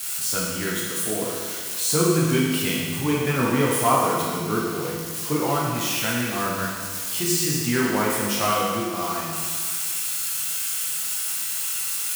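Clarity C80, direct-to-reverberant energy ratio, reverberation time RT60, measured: 1.0 dB, -5.5 dB, 1.8 s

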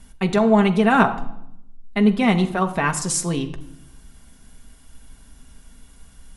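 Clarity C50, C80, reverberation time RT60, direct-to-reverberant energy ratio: 14.0 dB, 16.0 dB, 0.80 s, 4.0 dB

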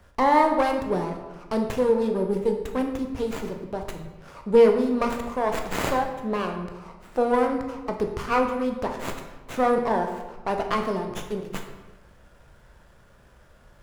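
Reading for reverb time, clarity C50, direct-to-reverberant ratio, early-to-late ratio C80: 1.2 s, 6.5 dB, 3.5 dB, 8.5 dB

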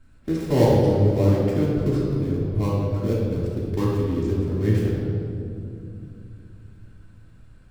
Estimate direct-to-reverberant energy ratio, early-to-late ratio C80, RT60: -9.5 dB, 1.0 dB, 2.6 s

